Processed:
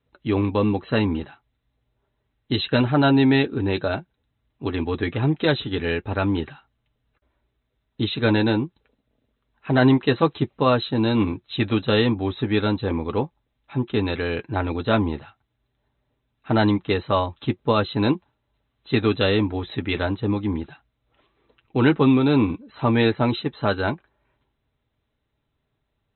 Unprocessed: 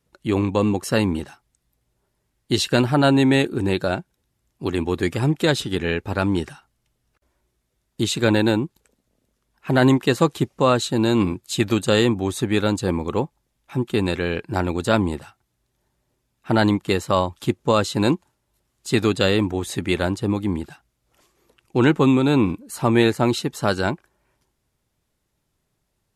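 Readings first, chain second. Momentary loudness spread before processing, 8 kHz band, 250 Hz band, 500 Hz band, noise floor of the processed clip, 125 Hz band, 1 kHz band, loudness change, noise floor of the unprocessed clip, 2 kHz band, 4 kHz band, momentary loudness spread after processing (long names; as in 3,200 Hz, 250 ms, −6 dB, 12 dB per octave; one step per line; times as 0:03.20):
10 LU, below −40 dB, −1.0 dB, −1.5 dB, −76 dBFS, −0.5 dB, −1.0 dB, −1.5 dB, −74 dBFS, −1.0 dB, −2.0 dB, 10 LU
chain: linear-phase brick-wall low-pass 4,100 Hz
notch comb filter 180 Hz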